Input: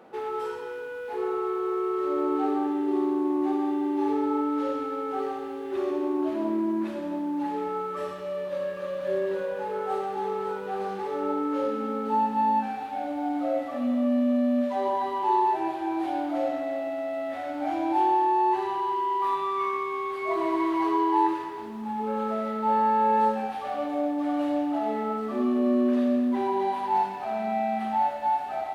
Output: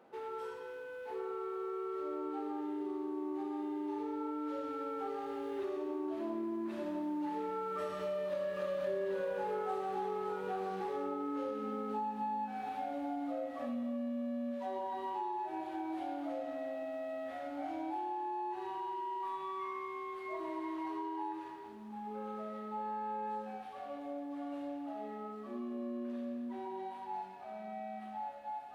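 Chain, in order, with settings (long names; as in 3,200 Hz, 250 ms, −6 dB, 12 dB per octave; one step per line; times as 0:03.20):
source passing by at 0:09.23, 8 m/s, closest 4 metres
downward compressor 6 to 1, threshold −51 dBFS, peak gain reduction 23.5 dB
level +15 dB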